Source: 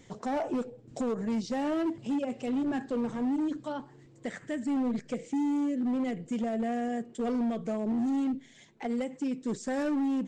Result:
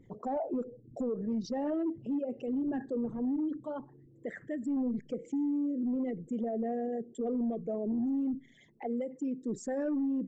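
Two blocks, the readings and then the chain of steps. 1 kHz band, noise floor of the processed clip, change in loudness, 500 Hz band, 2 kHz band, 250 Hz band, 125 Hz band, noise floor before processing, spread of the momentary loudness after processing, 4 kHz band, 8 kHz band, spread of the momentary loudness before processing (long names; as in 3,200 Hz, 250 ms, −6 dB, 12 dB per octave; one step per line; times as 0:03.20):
−5.5 dB, −59 dBFS, −2.5 dB, −1.0 dB, −9.0 dB, −2.5 dB, −3.0 dB, −56 dBFS, 7 LU, below −10 dB, can't be measured, 7 LU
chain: spectral envelope exaggerated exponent 2
one half of a high-frequency compander decoder only
level −2.5 dB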